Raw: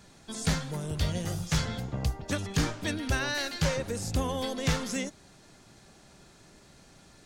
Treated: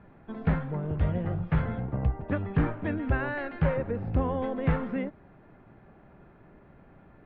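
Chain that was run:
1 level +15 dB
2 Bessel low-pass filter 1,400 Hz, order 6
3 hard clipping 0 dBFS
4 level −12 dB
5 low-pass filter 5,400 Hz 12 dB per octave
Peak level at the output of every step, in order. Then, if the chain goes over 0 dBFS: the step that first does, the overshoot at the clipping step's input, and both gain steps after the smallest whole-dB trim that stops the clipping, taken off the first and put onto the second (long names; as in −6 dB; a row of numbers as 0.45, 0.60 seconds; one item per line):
−4.0, −4.0, −4.0, −16.0, −16.0 dBFS
no step passes full scale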